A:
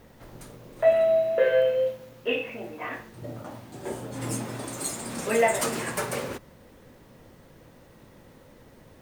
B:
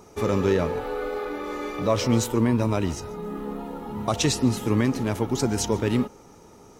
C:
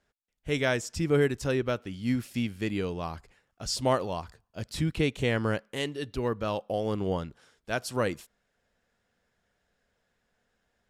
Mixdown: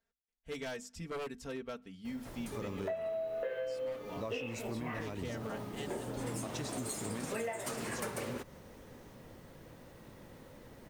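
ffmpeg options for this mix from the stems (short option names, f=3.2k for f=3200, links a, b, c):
-filter_complex "[0:a]adelay=2050,volume=-1.5dB[a];[1:a]adelay=2350,volume=-14dB[b];[2:a]bandreject=f=50:t=h:w=6,bandreject=f=100:t=h:w=6,bandreject=f=150:t=h:w=6,bandreject=f=200:t=h:w=6,bandreject=f=250:t=h:w=6,aecho=1:1:4.4:0.77,aeval=exprs='0.112*(abs(mod(val(0)/0.112+3,4)-2)-1)':c=same,volume=-14dB[c];[a][b][c]amix=inputs=3:normalize=0,acompressor=threshold=-35dB:ratio=10"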